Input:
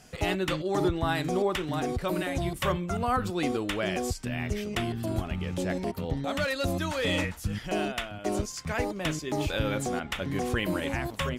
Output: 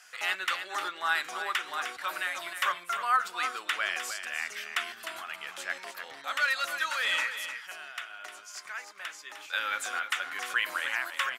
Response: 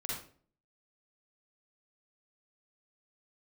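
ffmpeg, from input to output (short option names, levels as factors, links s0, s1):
-filter_complex "[0:a]asettb=1/sr,asplit=3[s0][s1][s2];[s0]atrim=end=7.334[s3];[s1]atrim=start=7.33:end=9.53,asetpts=PTS-STARTPTS,afade=t=in:d=0.004:c=qsin,afade=t=out:st=2.196:d=0.004:c=qsin,acompressor=threshold=0.0141:ratio=5[s4];[s2]atrim=start=9.526[s5];[s3][s4]acrossfade=d=0.004:c1=hsin:c2=qsin[s6];[s6][s5]acrossfade=d=0.004:c1=qsin:c2=hsin,highpass=f=1400:t=q:w=2.2,aecho=1:1:304:0.355"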